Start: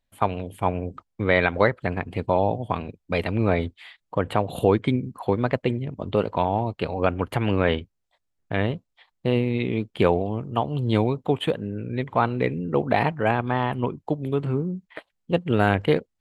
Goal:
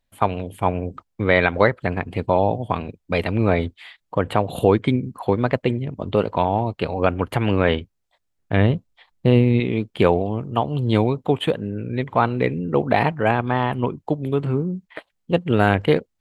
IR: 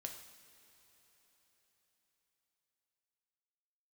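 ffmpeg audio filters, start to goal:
-filter_complex "[0:a]asettb=1/sr,asplit=3[a][b][c];[a]atrim=end=8.534[d];[b]atrim=start=8.53:end=9.6,asetpts=PTS-STARTPTS,afade=t=in:d=0.004:c=qsin,afade=t=out:st=1.066:d=0.004:c=qsin,lowshelf=f=270:g=7.5[e];[c]atrim=start=9.596[f];[d][e]acrossfade=d=0.004:c1=hsin:c2=qsin[g];[g][f]acrossfade=d=0.004:c1=qsin:c2=hsin,volume=3dB"

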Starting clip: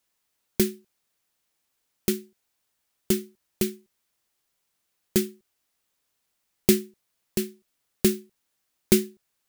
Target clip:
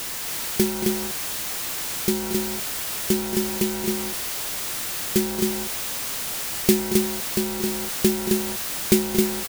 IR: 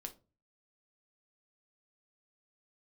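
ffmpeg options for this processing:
-filter_complex "[0:a]aeval=exprs='val(0)+0.5*0.0596*sgn(val(0))':c=same,asplit=2[a][b];[b]aecho=0:1:227.4|265.3:0.282|0.631[c];[a][c]amix=inputs=2:normalize=0"

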